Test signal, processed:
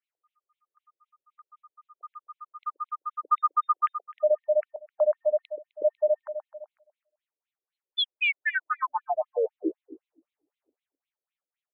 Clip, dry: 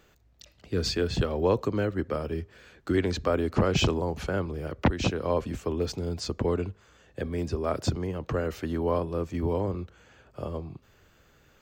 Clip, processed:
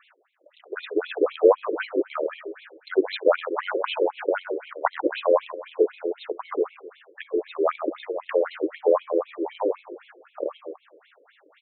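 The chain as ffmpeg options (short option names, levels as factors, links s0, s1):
-filter_complex "[0:a]acontrast=44,asplit=2[s0][s1];[s1]adelay=129,lowpass=f=5000:p=1,volume=0.335,asplit=2[s2][s3];[s3]adelay=129,lowpass=f=5000:p=1,volume=0.36,asplit=2[s4][s5];[s5]adelay=129,lowpass=f=5000:p=1,volume=0.36,asplit=2[s6][s7];[s7]adelay=129,lowpass=f=5000:p=1,volume=0.36[s8];[s0][s2][s4][s6][s8]amix=inputs=5:normalize=0,afftfilt=real='re*between(b*sr/1024,400*pow(3000/400,0.5+0.5*sin(2*PI*3.9*pts/sr))/1.41,400*pow(3000/400,0.5+0.5*sin(2*PI*3.9*pts/sr))*1.41)':imag='im*between(b*sr/1024,400*pow(3000/400,0.5+0.5*sin(2*PI*3.9*pts/sr))/1.41,400*pow(3000/400,0.5+0.5*sin(2*PI*3.9*pts/sr))*1.41)':win_size=1024:overlap=0.75,volume=1.78"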